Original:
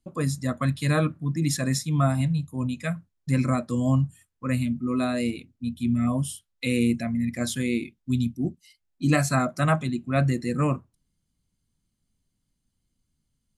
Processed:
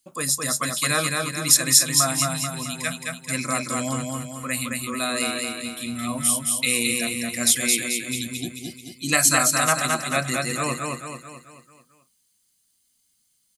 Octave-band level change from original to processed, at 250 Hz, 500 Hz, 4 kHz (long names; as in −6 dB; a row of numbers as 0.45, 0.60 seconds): −5.0, +0.5, +13.5 decibels